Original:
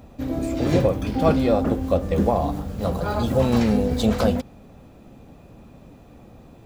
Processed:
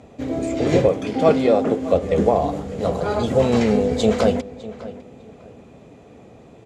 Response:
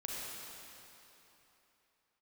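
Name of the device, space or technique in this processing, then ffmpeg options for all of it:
car door speaker: -filter_complex "[0:a]asettb=1/sr,asplit=3[link_01][link_02][link_03];[link_01]atrim=end=0.904[link_04];[link_02]atrim=start=0.9:end=1.93,asetpts=PTS-STARTPTS,afade=type=in:duration=0.004:curve=qsin,afade=type=out:start_time=1.026:duration=0.004:curve=qsin,highpass=140[link_05];[link_03]atrim=start=1.926[link_06];[link_04][link_05]acrossfade=duration=0.004:curve1=hsin:curve2=qsin[link_07];[link_07][link_06]acrossfade=duration=0.004:curve1=qsin:curve2=hsin,highpass=86,equalizer=frequency=430:width_type=q:width=4:gain=9,equalizer=frequency=670:width_type=q:width=4:gain=4,equalizer=frequency=2100:width_type=q:width=4:gain=6,equalizer=frequency=3100:width_type=q:width=4:gain=3,equalizer=frequency=7000:width_type=q:width=4:gain=5,lowpass=frequency=9500:width=0.5412,lowpass=frequency=9500:width=1.3066,asplit=2[link_08][link_09];[link_09]adelay=603,lowpass=frequency=3200:poles=1,volume=-16.5dB,asplit=2[link_10][link_11];[link_11]adelay=603,lowpass=frequency=3200:poles=1,volume=0.26,asplit=2[link_12][link_13];[link_13]adelay=603,lowpass=frequency=3200:poles=1,volume=0.26[link_14];[link_08][link_10][link_12][link_14]amix=inputs=4:normalize=0"

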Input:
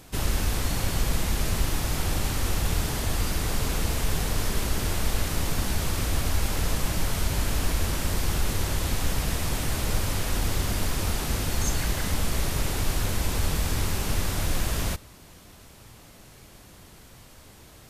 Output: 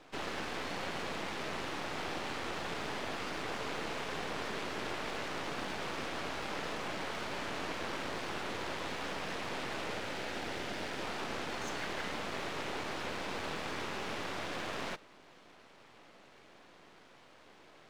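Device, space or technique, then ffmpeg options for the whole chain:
crystal radio: -filter_complex "[0:a]asettb=1/sr,asplit=3[link_01][link_02][link_03];[link_01]atrim=end=9.934[link_04];[link_02]atrim=start=9.93:end=11.01,asetpts=PTS-STARTPTS,afade=type=in:duration=0.004:curve=qsin,afade=type=out:start_time=1.076:duration=0.004:curve=qsin,equalizer=frequency=1100:width=7.2:gain=-11.5[link_05];[link_03]atrim=start=11.006[link_06];[link_04][link_05]acrossfade=duration=0.004:curve1=hsin:curve2=qsin[link_07];[link_07][link_06]acrossfade=duration=0.004:curve1=qsin:curve2=hsin,highpass=320,lowpass=3000,aeval=exprs='if(lt(val(0),0),0.251*val(0),val(0))':channel_layout=same"

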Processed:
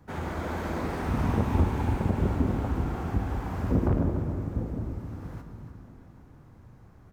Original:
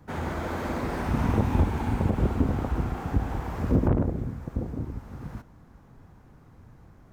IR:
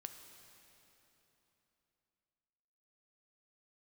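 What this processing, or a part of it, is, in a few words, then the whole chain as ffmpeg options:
cave: -filter_complex "[0:a]aecho=1:1:293:0.224[link_01];[1:a]atrim=start_sample=2205[link_02];[link_01][link_02]afir=irnorm=-1:irlink=0,volume=3dB"

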